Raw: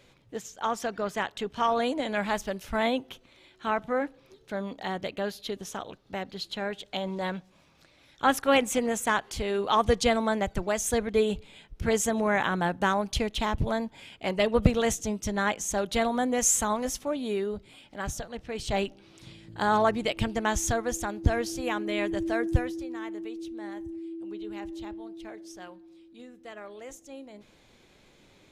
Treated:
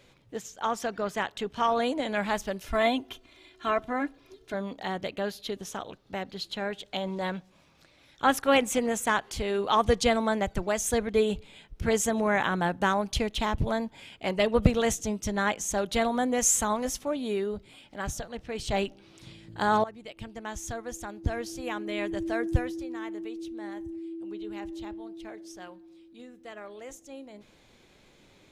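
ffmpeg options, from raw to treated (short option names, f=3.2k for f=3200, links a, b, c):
-filter_complex "[0:a]asettb=1/sr,asplit=3[a][b][c];[a]atrim=end=2.664[d];[b]atrim=start=2.66:end=4.54,asetpts=PTS-STARTPTS,afade=t=in:d=0.004:c=qsin,afade=t=out:st=1.876:d=0.004:c=qsin,aecho=1:1:2.9:0.69,atrim=end_sample=82908[e];[c]atrim=start=4.536[f];[d][e]acrossfade=d=0.004:c1=hsin:c2=qsin[g];[g][f]acrossfade=d=0.004:c1=qsin:c2=hsin,asplit=2[h][i];[h]atrim=end=19.84,asetpts=PTS-STARTPTS,afade=t=out:st=19.836:d=0.004:c=hsin:silence=0.112202[j];[i]atrim=start=19.84,asetpts=PTS-STARTPTS,afade=t=in:d=3.09:silence=0.112202[k];[j][k]concat=n=2:v=0:a=1"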